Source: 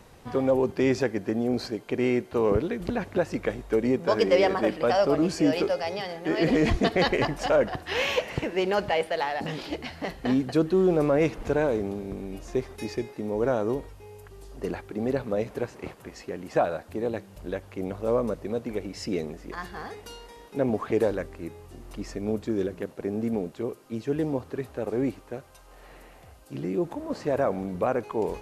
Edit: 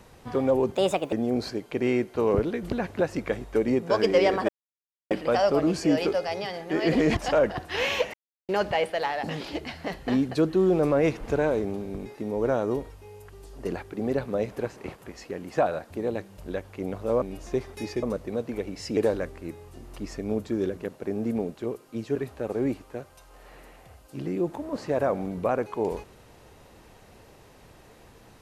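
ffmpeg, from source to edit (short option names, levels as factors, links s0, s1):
-filter_complex "[0:a]asplit=12[s0][s1][s2][s3][s4][s5][s6][s7][s8][s9][s10][s11];[s0]atrim=end=0.754[s12];[s1]atrim=start=0.75:end=1.3,asetpts=PTS-STARTPTS,asetrate=64386,aresample=44100,atrim=end_sample=16613,asetpts=PTS-STARTPTS[s13];[s2]atrim=start=1.296:end=4.66,asetpts=PTS-STARTPTS,afade=t=out:st=3.36:d=0.004:c=hsin,apad=pad_dur=0.62[s14];[s3]atrim=start=4.66:end=6.722,asetpts=PTS-STARTPTS,afade=t=in:d=0.004:c=hsin[s15];[s4]atrim=start=7.338:end=8.31,asetpts=PTS-STARTPTS,afade=t=out:st=0.968:d=0.004:c=hsin[s16];[s5]atrim=start=8.31:end=8.66,asetpts=PTS-STARTPTS,volume=0[s17];[s6]atrim=start=8.66:end=12.232,asetpts=PTS-STARTPTS,afade=t=in:d=0.004:c=hsin[s18];[s7]atrim=start=13.038:end=18.202[s19];[s8]atrim=start=12.228:end=13.042[s20];[s9]atrim=start=18.198:end=19.142[s21];[s10]atrim=start=20.938:end=24.132[s22];[s11]atrim=start=24.528[s23];[s12][s13]acrossfade=d=0.004:c1=hsin:c2=hsin[s24];[s14][s15]concat=n=2:v=0:a=1[s25];[s24][s25]acrossfade=d=0.004:c1=hsin:c2=hsin[s26];[s16][s17][s18]concat=n=3:v=0:a=1[s27];[s26][s27]acrossfade=d=0.004:c1=hsin:c2=hsin[s28];[s28][s19]acrossfade=d=0.004:c1=hsin:c2=hsin[s29];[s29][s20]acrossfade=d=0.004:c1=hsin:c2=hsin[s30];[s30][s21]acrossfade=d=0.004:c1=hsin:c2=hsin[s31];[s31][s22]acrossfade=d=0.004:c1=hsin:c2=hsin[s32];[s32][s23]acrossfade=d=0.004:c1=hsin:c2=hsin"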